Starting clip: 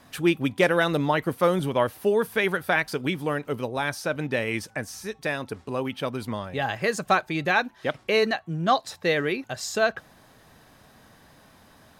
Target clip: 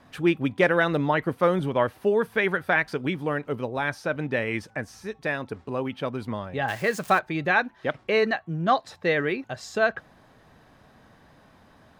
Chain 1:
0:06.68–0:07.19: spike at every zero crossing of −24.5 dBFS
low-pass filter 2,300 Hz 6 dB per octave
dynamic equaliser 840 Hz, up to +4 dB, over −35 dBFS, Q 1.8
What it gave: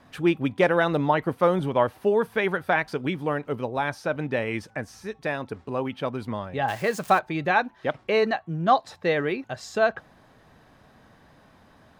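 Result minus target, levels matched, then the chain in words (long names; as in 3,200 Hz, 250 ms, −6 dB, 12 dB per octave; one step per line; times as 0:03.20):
2,000 Hz band −3.0 dB
0:06.68–0:07.19: spike at every zero crossing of −24.5 dBFS
low-pass filter 2,300 Hz 6 dB per octave
dynamic equaliser 1,800 Hz, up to +4 dB, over −35 dBFS, Q 1.8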